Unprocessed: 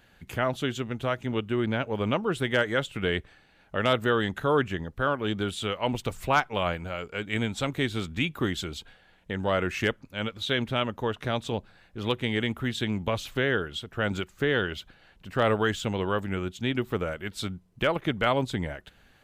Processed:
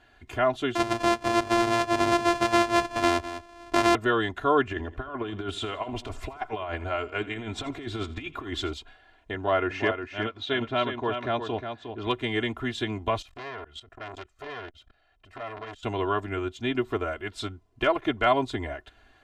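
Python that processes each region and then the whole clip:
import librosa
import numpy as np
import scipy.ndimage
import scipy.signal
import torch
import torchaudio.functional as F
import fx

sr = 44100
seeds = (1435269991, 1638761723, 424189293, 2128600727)

y = fx.chain(x, sr, fx.sample_sort(block=128),
    fx.echo_single(ms=202, db=-15.5),
    fx.band_squash(depth_pct=70), at=(0.75, 3.95))
y = fx.chain(y, sr, fx.high_shelf(hz=4700.0, db=-6.0),
    fx.over_compress(threshold_db=-31.0, ratio=-0.5),
    fx.echo_feedback(ms=83, feedback_pct=47, wet_db=-17.5), at=(4.67, 8.73))
y = fx.chain(y, sr, fx.highpass(hz=83.0, slope=12),
    fx.air_absorb(metres=110.0),
    fx.echo_single(ms=359, db=-7.5), at=(9.34, 12.07))
y = fx.chain(y, sr, fx.comb(ms=1.6, depth=0.39),
    fx.level_steps(step_db=17),
    fx.transformer_sat(knee_hz=2000.0), at=(13.22, 15.83))
y = scipy.signal.sosfilt(scipy.signal.bessel(2, 7000.0, 'lowpass', norm='mag', fs=sr, output='sos'), y)
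y = fx.peak_eq(y, sr, hz=840.0, db=5.5, octaves=1.5)
y = y + 0.93 * np.pad(y, (int(2.9 * sr / 1000.0), 0))[:len(y)]
y = y * librosa.db_to_amplitude(-3.5)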